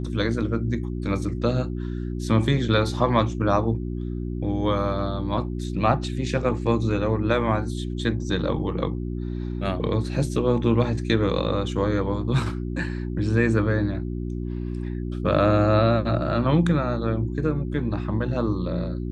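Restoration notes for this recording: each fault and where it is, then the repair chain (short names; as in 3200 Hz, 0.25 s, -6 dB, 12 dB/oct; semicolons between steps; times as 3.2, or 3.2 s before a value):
hum 60 Hz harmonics 6 -29 dBFS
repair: de-hum 60 Hz, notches 6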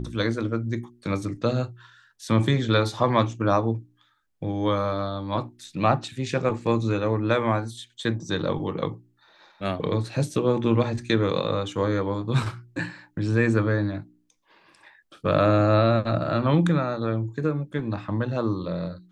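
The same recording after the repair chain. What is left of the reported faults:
none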